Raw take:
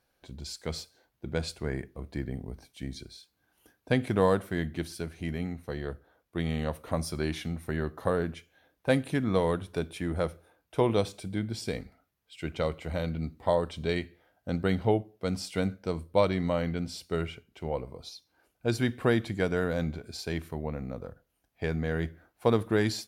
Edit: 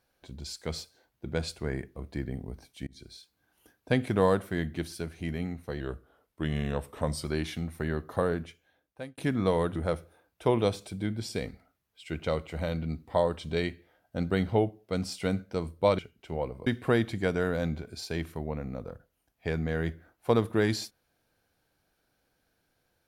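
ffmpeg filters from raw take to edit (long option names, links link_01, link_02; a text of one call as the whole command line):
ffmpeg -i in.wav -filter_complex "[0:a]asplit=8[link_01][link_02][link_03][link_04][link_05][link_06][link_07][link_08];[link_01]atrim=end=2.87,asetpts=PTS-STARTPTS,afade=type=out:start_time=2.866:duration=0.004:curve=hsin[link_09];[link_02]atrim=start=2.87:end=5.804,asetpts=PTS-STARTPTS,afade=type=in:duration=0.26[link_10];[link_03]atrim=start=5.8:end=7.13,asetpts=PTS-STARTPTS,asetrate=40572,aresample=44100,atrim=end_sample=63753,asetpts=PTS-STARTPTS[link_11];[link_04]atrim=start=7.126:end=9.06,asetpts=PTS-STARTPTS,afade=type=out:start_time=1.054:duration=0.88[link_12];[link_05]atrim=start=9.06:end=9.642,asetpts=PTS-STARTPTS,afade=type=in:duration=0.004:curve=hsin[link_13];[link_06]atrim=start=10.078:end=16.312[link_14];[link_07]atrim=start=17.308:end=17.992[link_15];[link_08]atrim=start=18.828[link_16];[link_09][link_10]concat=n=2:v=0:a=1[link_17];[link_17][link_11]acrossfade=duration=0.004:curve1=hsin:curve2=hsin[link_18];[link_12][link_13]concat=n=2:v=0:a=1[link_19];[link_18][link_19]acrossfade=duration=0.004:curve1=hsin:curve2=hsin[link_20];[link_20][link_14]acrossfade=duration=0.004:curve1=hsin:curve2=hsin[link_21];[link_21][link_15]acrossfade=duration=0.004:curve1=hsin:curve2=hsin[link_22];[link_22][link_16]acrossfade=duration=0.004:curve1=hsin:curve2=hsin" out.wav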